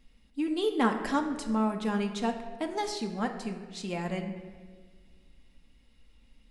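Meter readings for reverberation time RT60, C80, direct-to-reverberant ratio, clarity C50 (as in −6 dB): 1.6 s, 9.5 dB, 3.0 dB, 8.5 dB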